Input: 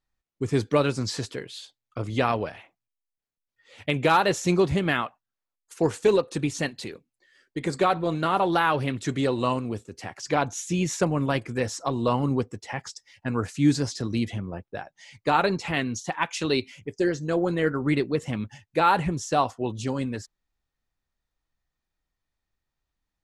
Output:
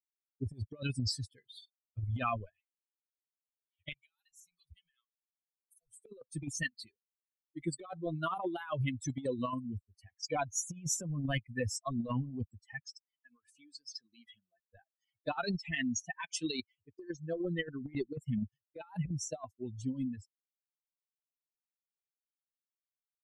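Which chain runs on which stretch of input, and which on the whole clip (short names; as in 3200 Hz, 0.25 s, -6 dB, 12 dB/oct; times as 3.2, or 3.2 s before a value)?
3.92–6.07 passive tone stack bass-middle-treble 10-0-10 + compressor, threshold -37 dBFS + harmonic tremolo 5.1 Hz, depth 50%, crossover 470 Hz
12.86–14.72 weighting filter A + compressor 12:1, threshold -33 dBFS
whole clip: per-bin expansion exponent 3; low shelf 62 Hz +9 dB; negative-ratio compressor -35 dBFS, ratio -0.5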